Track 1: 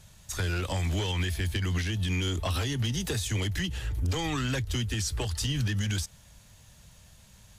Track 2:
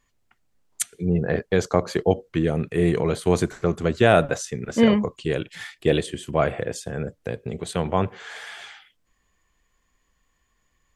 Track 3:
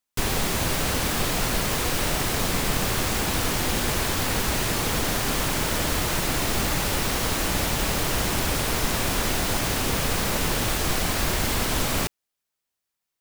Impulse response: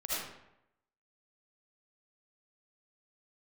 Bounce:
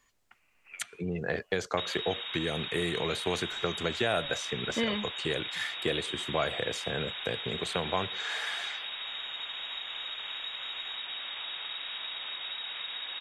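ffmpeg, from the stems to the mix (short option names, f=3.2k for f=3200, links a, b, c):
-filter_complex "[0:a]acompressor=threshold=-38dB:ratio=2,highpass=f=1.2k:t=q:w=4.9,adelay=350,volume=-12dB[a];[1:a]acrossover=split=85|1600|3800[b][c][d][e];[b]acompressor=threshold=-45dB:ratio=4[f];[c]acompressor=threshold=-29dB:ratio=4[g];[d]acompressor=threshold=-39dB:ratio=4[h];[e]acompressor=threshold=-49dB:ratio=4[i];[f][g][h][i]amix=inputs=4:normalize=0,volume=3dB,asplit=2[j][k];[2:a]equalizer=f=190:t=o:w=1.2:g=-6,adelay=1600,volume=-4.5dB[l];[k]apad=whole_len=349741[m];[a][m]sidechaincompress=threshold=-47dB:ratio=8:attack=16:release=239[n];[n][l]amix=inputs=2:normalize=0,lowpass=f=3.2k:t=q:w=0.5098,lowpass=f=3.2k:t=q:w=0.6013,lowpass=f=3.2k:t=q:w=0.9,lowpass=f=3.2k:t=q:w=2.563,afreqshift=-3800,acompressor=threshold=-36dB:ratio=5,volume=0dB[o];[j][o]amix=inputs=2:normalize=0,lowshelf=f=360:g=-9.5"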